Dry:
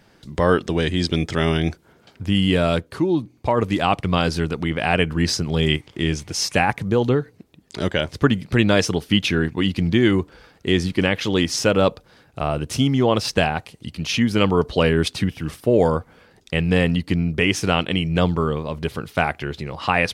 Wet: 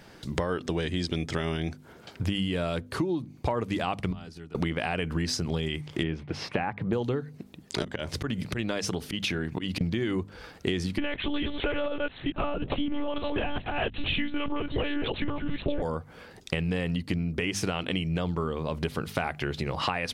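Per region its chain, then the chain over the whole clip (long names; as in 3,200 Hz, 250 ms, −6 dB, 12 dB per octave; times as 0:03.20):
0:04.11–0:04.55: high-pass filter 55 Hz 24 dB per octave + notch comb filter 530 Hz + gate with flip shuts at −16 dBFS, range −25 dB
0:06.03–0:06.93: high-pass filter 110 Hz 6 dB per octave + downward expander −39 dBFS + high-frequency loss of the air 420 metres
0:07.82–0:09.81: high-pass filter 41 Hz + volume swells 172 ms + downward compressor 3 to 1, threshold −30 dBFS
0:10.98–0:15.82: delay that plays each chunk backwards 441 ms, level −5 dB + one-pitch LPC vocoder at 8 kHz 290 Hz
whole clip: mains-hum notches 50/100/150/200/250 Hz; brickwall limiter −9 dBFS; downward compressor 12 to 1, threshold −29 dBFS; level +4 dB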